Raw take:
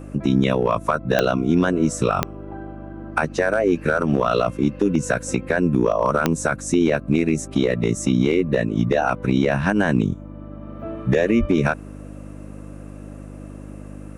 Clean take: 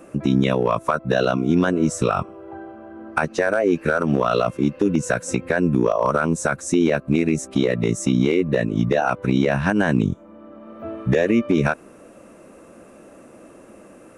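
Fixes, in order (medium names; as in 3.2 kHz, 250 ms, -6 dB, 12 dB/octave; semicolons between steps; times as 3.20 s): de-click; de-hum 50.3 Hz, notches 6; de-plosive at 11.39 s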